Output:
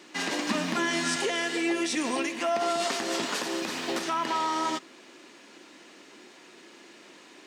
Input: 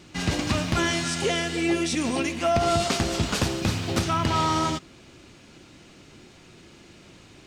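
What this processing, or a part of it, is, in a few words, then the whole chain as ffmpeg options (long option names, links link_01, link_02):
laptop speaker: -filter_complex "[0:a]highpass=frequency=260:width=0.5412,highpass=frequency=260:width=1.3066,equalizer=frequency=990:width_type=o:width=0.21:gain=5.5,equalizer=frequency=1800:width_type=o:width=0.24:gain=6.5,alimiter=limit=-19dB:level=0:latency=1:release=134,asettb=1/sr,asplit=3[link_01][link_02][link_03];[link_01]atrim=end=0.494[link_04];[link_02]atrim=start=0.49:end=1.16,asetpts=PTS-STARTPTS,afade=type=in:duration=0.004:curve=qsin,afade=type=out:start_time=0.666:duration=0.004:curve=qsin,equalizer=frequency=200:width_type=o:width=0.74:gain=12[link_05];[link_03]atrim=start=1.156[link_06];[link_04][link_05]acrossfade=duration=0.004:curve1=hsin:curve2=qsin[link_07];[link_07][link_06]acrossfade=duration=0.004:curve1=qsin:curve2=hsin"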